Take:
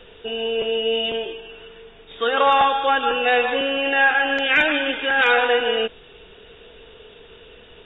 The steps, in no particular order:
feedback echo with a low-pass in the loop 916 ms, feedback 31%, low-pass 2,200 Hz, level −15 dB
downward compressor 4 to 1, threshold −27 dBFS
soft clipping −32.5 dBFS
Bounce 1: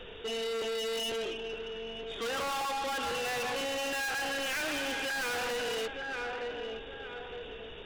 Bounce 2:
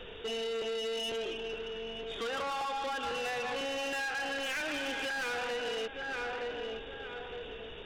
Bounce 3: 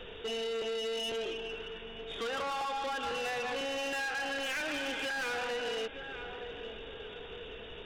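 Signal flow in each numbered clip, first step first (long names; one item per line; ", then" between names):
feedback echo with a low-pass in the loop, then soft clipping, then downward compressor
feedback echo with a low-pass in the loop, then downward compressor, then soft clipping
downward compressor, then feedback echo with a low-pass in the loop, then soft clipping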